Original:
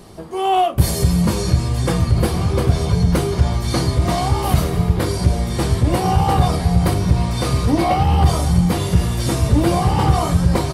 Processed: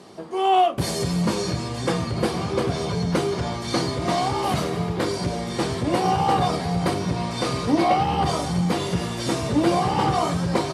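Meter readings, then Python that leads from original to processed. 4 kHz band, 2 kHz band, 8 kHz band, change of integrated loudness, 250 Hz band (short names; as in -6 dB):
-2.0 dB, -1.5 dB, -5.5 dB, -5.5 dB, -4.0 dB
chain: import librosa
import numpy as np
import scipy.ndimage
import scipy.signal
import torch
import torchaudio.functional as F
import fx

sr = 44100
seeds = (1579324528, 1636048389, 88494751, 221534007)

y = fx.bandpass_edges(x, sr, low_hz=200.0, high_hz=7400.0)
y = F.gain(torch.from_numpy(y), -1.5).numpy()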